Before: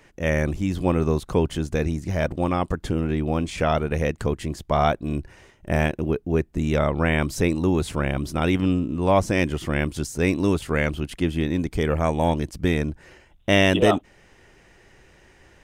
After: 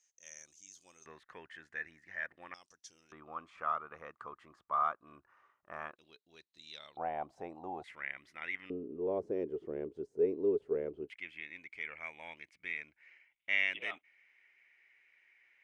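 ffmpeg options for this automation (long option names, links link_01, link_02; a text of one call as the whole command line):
ffmpeg -i in.wav -af "asetnsamples=nb_out_samples=441:pad=0,asendcmd='1.06 bandpass f 1800;2.54 bandpass f 5800;3.12 bandpass f 1200;5.96 bandpass f 4000;6.97 bandpass f 760;7.84 bandpass f 2000;8.7 bandpass f 420;11.1 bandpass f 2200',bandpass=frequency=6400:width_type=q:width=10:csg=0" out.wav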